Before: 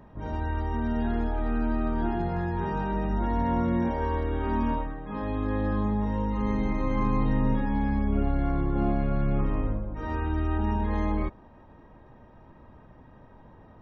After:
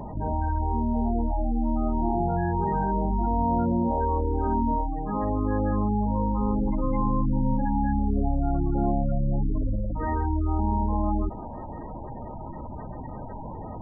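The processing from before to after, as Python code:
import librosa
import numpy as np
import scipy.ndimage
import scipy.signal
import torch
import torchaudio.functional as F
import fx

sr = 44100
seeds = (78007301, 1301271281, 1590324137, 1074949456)

y = fx.peak_eq(x, sr, hz=790.0, db=5.0, octaves=0.64)
y = fx.spec_gate(y, sr, threshold_db=-15, keep='strong')
y = fx.env_flatten(y, sr, amount_pct=50)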